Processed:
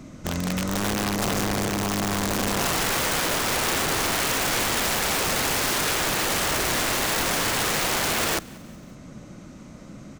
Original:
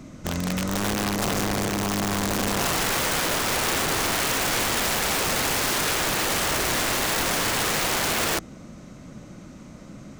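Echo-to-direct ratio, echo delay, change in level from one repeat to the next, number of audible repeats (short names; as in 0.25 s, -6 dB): -22.0 dB, 0.187 s, -5.5 dB, 3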